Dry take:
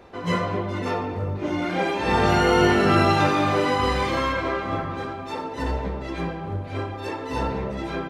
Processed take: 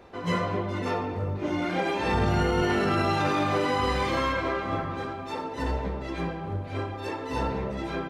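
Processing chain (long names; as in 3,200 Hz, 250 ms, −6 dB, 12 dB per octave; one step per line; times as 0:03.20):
0:02.14–0:02.62: low-shelf EQ 210 Hz +11 dB
brickwall limiter −13.5 dBFS, peak gain reduction 9 dB
level −2.5 dB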